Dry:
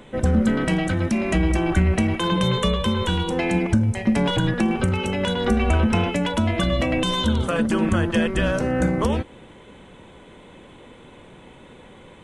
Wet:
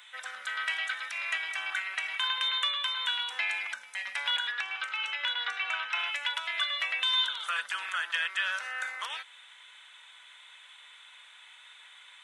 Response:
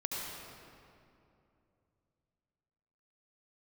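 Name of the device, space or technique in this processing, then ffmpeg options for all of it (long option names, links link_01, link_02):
headphones lying on a table: -filter_complex "[0:a]asettb=1/sr,asplit=3[link_01][link_02][link_03];[link_01]atrim=end=4.524[link_04];[link_02]atrim=start=4.52:end=5.99,asetpts=PTS-STARTPTS,afade=type=in:duration=0.004:curve=qsin,afade=type=out:start_time=1.466:duration=0.004:curve=qsin,lowpass=5200[link_05];[link_03]atrim=start=5.986[link_06];[link_04][link_05]acrossfade=duration=0.004:curve1=hsin:curve2=qsin[link_07];[link_07][link_06]acrossfade=duration=0.004:curve1=qsin:curve2=hsin,highpass=frequency=1300:width=0.5412,highpass=frequency=1300:width=1.3066,equalizer=frequency=3600:width_type=o:width=0.21:gain=7,bandreject=frequency=1100:width=16,acrossover=split=3500[link_08][link_09];[link_09]acompressor=threshold=-44dB:ratio=4:attack=1:release=60[link_10];[link_08][link_10]amix=inputs=2:normalize=0"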